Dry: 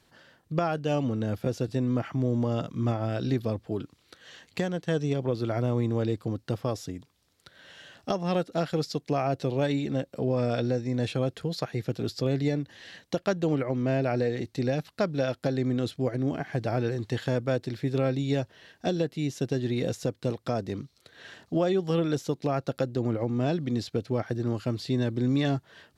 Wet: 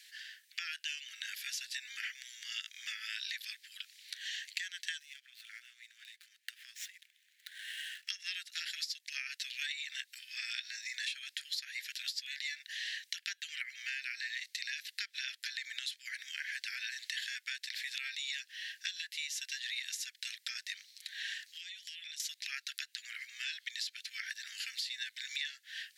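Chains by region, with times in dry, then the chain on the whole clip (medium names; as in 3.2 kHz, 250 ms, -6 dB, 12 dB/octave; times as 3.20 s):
4.99–8.09 s: median filter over 9 samples + compression 4:1, threshold -40 dBFS
21.56–22.20 s: inverse Chebyshev high-pass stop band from 310 Hz, stop band 80 dB + compression 16:1, threshold -53 dBFS + loudspeaker Doppler distortion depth 0.27 ms
whole clip: steep high-pass 1.7 kHz 72 dB/octave; compression, threshold -48 dBFS; trim +11.5 dB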